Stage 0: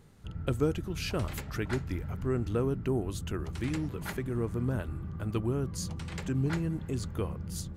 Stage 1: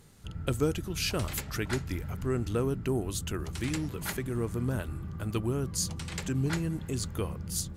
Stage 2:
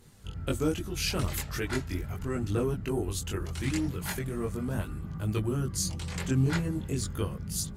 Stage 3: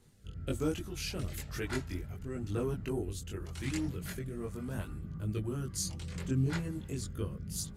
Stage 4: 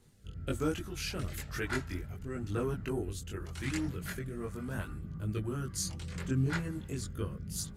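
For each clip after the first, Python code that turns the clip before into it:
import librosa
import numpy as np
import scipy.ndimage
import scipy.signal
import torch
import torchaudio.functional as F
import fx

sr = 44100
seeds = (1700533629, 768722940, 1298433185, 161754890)

y1 = fx.peak_eq(x, sr, hz=11000.0, db=9.5, octaves=2.8)
y2 = fx.chorus_voices(y1, sr, voices=2, hz=0.39, base_ms=21, depth_ms=1.8, mix_pct=50)
y2 = y2 * 10.0 ** (3.5 / 20.0)
y3 = fx.rotary(y2, sr, hz=1.0)
y3 = y3 * 10.0 ** (-4.0 / 20.0)
y4 = fx.dynamic_eq(y3, sr, hz=1500.0, q=1.4, threshold_db=-57.0, ratio=4.0, max_db=6)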